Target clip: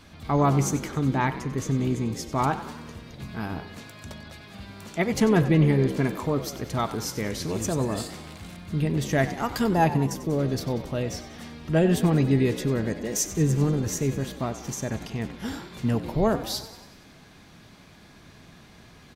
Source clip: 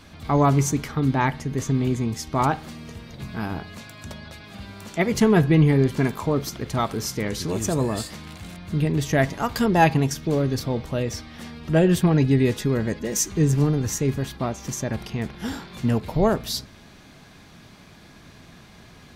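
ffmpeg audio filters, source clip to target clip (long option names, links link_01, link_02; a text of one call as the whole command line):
ffmpeg -i in.wav -filter_complex "[0:a]asettb=1/sr,asplit=3[link_01][link_02][link_03];[link_01]atrim=end=9.744[link_04];[link_02]atrim=start=9.74:end=10.39,asetpts=PTS-STARTPTS,afade=type=in:duration=0.004:curve=qsin,afade=type=out:start_time=0.646:duration=0.004:curve=qsin,equalizer=frequency=2800:width_type=o:width=2.1:gain=-7[link_05];[link_03]atrim=start=10.386[link_06];[link_04][link_05]acrossfade=duration=0.004:curve1=hsin:curve2=qsin[link_07];[link_07][link_06]acrossfade=duration=0.004:curve1=qsin:curve2=hsin,asplit=2[link_08][link_09];[link_09]asplit=6[link_10][link_11][link_12][link_13][link_14][link_15];[link_10]adelay=94,afreqshift=57,volume=-14dB[link_16];[link_11]adelay=188,afreqshift=114,volume=-18.7dB[link_17];[link_12]adelay=282,afreqshift=171,volume=-23.5dB[link_18];[link_13]adelay=376,afreqshift=228,volume=-28.2dB[link_19];[link_14]adelay=470,afreqshift=285,volume=-32.9dB[link_20];[link_15]adelay=564,afreqshift=342,volume=-37.7dB[link_21];[link_16][link_17][link_18][link_19][link_20][link_21]amix=inputs=6:normalize=0[link_22];[link_08][link_22]amix=inputs=2:normalize=0,volume=-3dB" out.wav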